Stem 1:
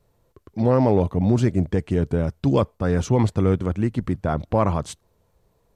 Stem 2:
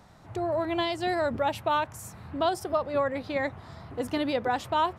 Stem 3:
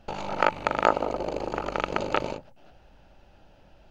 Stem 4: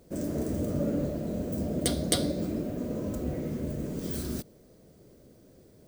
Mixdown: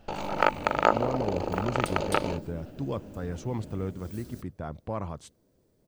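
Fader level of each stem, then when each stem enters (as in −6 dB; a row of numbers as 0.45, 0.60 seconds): −13.5 dB, muted, −0.5 dB, −12.5 dB; 0.35 s, muted, 0.00 s, 0.00 s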